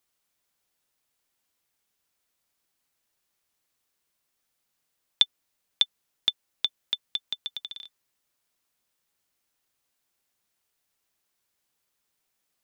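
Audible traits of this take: noise floor -79 dBFS; spectral tilt -1.5 dB/octave

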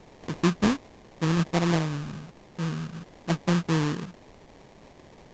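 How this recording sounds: a quantiser's noise floor 8-bit, dither triangular; phasing stages 8, 1.3 Hz, lowest notch 700–1500 Hz; aliases and images of a low sample rate 1.4 kHz, jitter 20%; A-law

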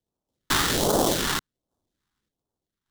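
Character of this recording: aliases and images of a low sample rate 2.5 kHz, jitter 20%; random-step tremolo 3.5 Hz; phasing stages 2, 1.3 Hz, lowest notch 540–2000 Hz

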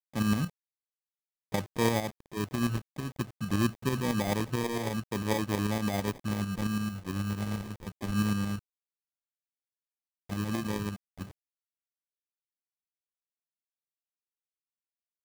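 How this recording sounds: phasing stages 6, 0.24 Hz, lowest notch 530–2000 Hz; a quantiser's noise floor 8-bit, dither none; tremolo saw up 9 Hz, depth 55%; aliases and images of a low sample rate 1.4 kHz, jitter 0%

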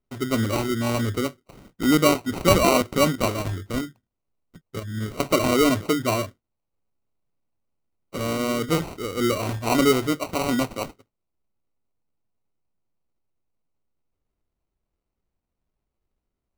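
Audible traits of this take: aliases and images of a low sample rate 1.7 kHz, jitter 0%

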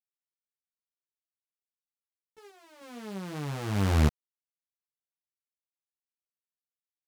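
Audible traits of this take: random-step tremolo 3.2 Hz; a quantiser's noise floor 12-bit, dither none; a shimmering, thickened sound

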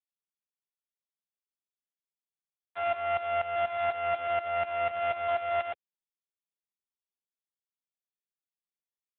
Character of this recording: a buzz of ramps at a fixed pitch in blocks of 64 samples; tremolo saw up 4.1 Hz, depth 85%; a quantiser's noise floor 12-bit, dither none; AMR-NB

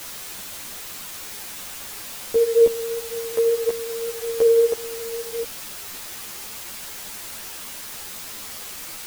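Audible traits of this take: tremolo triangle 0.78 Hz, depth 65%; a quantiser's noise floor 8-bit, dither triangular; a shimmering, thickened sound

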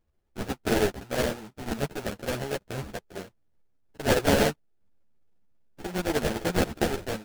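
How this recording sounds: aliases and images of a low sample rate 1.1 kHz, jitter 20%; a shimmering, thickened sound

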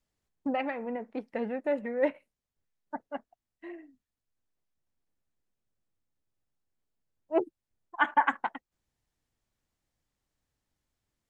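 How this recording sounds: noise floor -89 dBFS; spectral tilt +2.0 dB/octave

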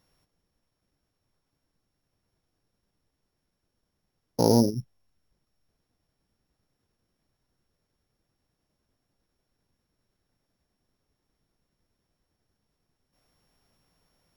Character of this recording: a buzz of ramps at a fixed pitch in blocks of 8 samples

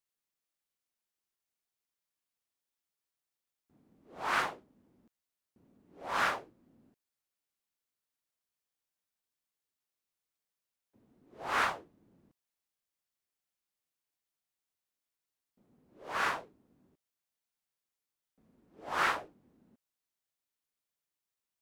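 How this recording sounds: noise floor -90 dBFS; spectral tilt -2.0 dB/octave

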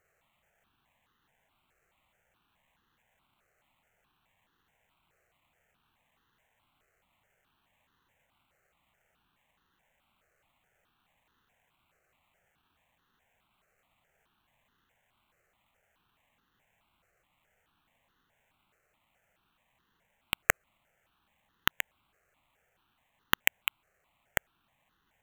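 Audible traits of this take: aliases and images of a low sample rate 5 kHz, jitter 0%; notches that jump at a steady rate 4.7 Hz 960–2300 Hz

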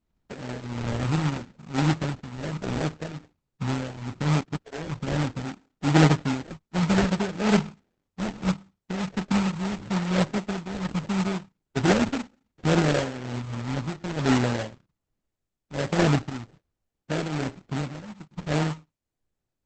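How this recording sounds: phasing stages 4, 0.71 Hz, lowest notch 420–1000 Hz; aliases and images of a low sample rate 1.1 kHz, jitter 20%; tremolo triangle 1.2 Hz, depth 80%; Opus

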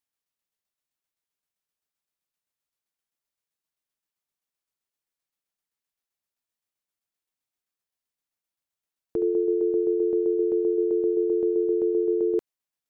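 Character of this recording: tremolo saw down 7.7 Hz, depth 45%

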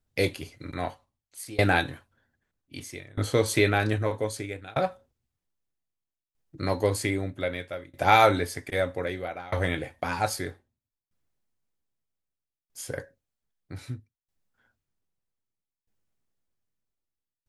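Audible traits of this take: tremolo saw down 0.63 Hz, depth 95%

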